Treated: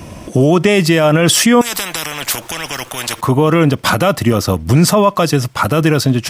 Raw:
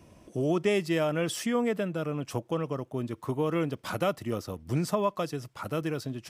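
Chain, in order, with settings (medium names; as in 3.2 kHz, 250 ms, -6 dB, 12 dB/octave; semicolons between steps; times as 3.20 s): peaking EQ 390 Hz -4 dB 1 oct; loudness maximiser +25 dB; 1.61–3.21 s: spectrum-flattening compressor 10:1; trim -1 dB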